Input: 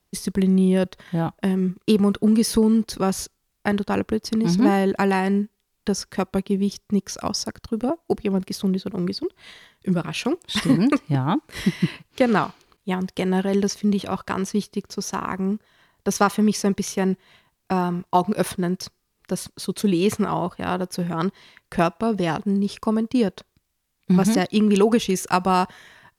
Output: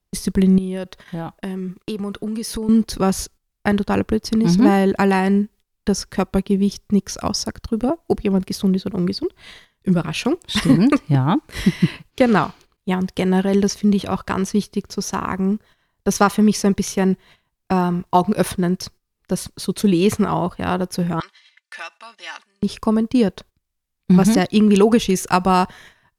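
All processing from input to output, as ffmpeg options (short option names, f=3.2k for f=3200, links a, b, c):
-filter_complex "[0:a]asettb=1/sr,asplit=3[a][b][c];[a]atrim=end=0.584[d];[b]atrim=start=0.58:end=2.69,asetpts=PTS-STARTPTS,afade=t=in:d=0.004:c=qsin,afade=t=out:st=2.106:d=0.004:c=qsin,lowshelf=f=220:g=-8.5,acompressor=threshold=-29dB:ratio=3:attack=3.2:release=140:knee=1:detection=peak[e];[c]atrim=start=2.686[f];[d][e]acrossfade=d=0.004:c1=hsin:c2=qsin[g];[g][f]acrossfade=d=0.004:c1=qsin:c2=hsin,asettb=1/sr,asplit=3[h][i][j];[h]atrim=end=21.204[k];[i]atrim=start=21.2:end=22.63,asetpts=PTS-STARTPTS,afade=t=in:d=0.004:c=qsin,afade=t=out:st=1.426:d=0.004:c=qsin,aecho=1:1:3.4:0.68,atrim=end_sample=63063,acompressor=threshold=-25dB:ratio=2:attack=3.2:release=140:knee=1:detection=peak,asuperpass=centerf=3600:order=4:qfactor=0.56[l];[j]atrim=start=22.626[m];[k][l]acrossfade=d=0.004:c1=hsin:c2=qsin[n];[n][m]acrossfade=d=0.004:c1=qsin:c2=hsin,agate=range=-12dB:threshold=-46dB:ratio=16:detection=peak,lowshelf=f=73:g=12,volume=3dB"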